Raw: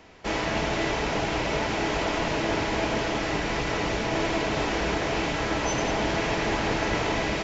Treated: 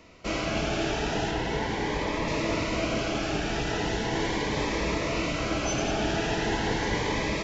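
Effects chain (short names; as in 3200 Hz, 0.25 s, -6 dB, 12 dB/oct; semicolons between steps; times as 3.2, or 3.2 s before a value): 1.31–2.28 high shelf 4000 Hz -6.5 dB; cascading phaser rising 0.39 Hz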